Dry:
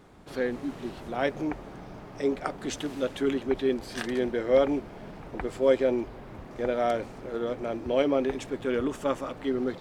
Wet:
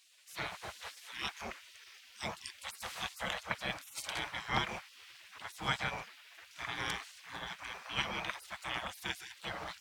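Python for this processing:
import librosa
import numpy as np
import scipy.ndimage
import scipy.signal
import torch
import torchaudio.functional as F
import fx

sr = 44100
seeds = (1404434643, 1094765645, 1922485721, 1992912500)

y = fx.spec_gate(x, sr, threshold_db=-25, keep='weak')
y = scipy.signal.sosfilt(scipy.signal.butter(2, 55.0, 'highpass', fs=sr, output='sos'), y)
y = F.gain(torch.from_numpy(y), 6.0).numpy()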